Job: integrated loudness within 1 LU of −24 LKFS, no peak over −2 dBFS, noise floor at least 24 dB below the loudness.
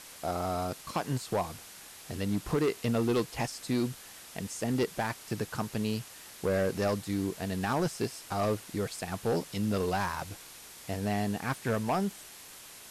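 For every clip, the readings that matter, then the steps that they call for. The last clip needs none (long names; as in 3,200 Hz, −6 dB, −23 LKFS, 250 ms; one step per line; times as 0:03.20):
share of clipped samples 1.6%; peaks flattened at −23.0 dBFS; background noise floor −49 dBFS; target noise floor −57 dBFS; integrated loudness −32.5 LKFS; sample peak −23.0 dBFS; target loudness −24.0 LKFS
→ clipped peaks rebuilt −23 dBFS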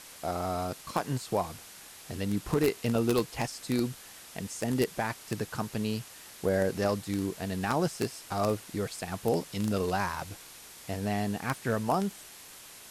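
share of clipped samples 0.0%; background noise floor −49 dBFS; target noise floor −56 dBFS
→ noise reduction from a noise print 7 dB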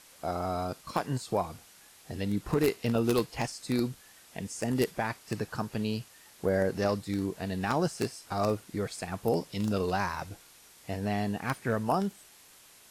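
background noise floor −56 dBFS; integrated loudness −31.5 LKFS; sample peak −14.0 dBFS; target loudness −24.0 LKFS
→ level +7.5 dB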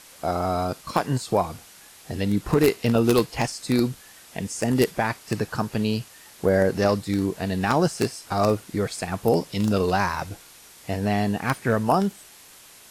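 integrated loudness −24.0 LKFS; sample peak −6.5 dBFS; background noise floor −49 dBFS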